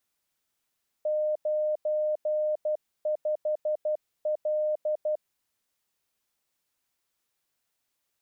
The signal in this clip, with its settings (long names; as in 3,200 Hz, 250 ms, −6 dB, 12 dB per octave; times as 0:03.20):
Morse code "95L" 12 words per minute 610 Hz −24 dBFS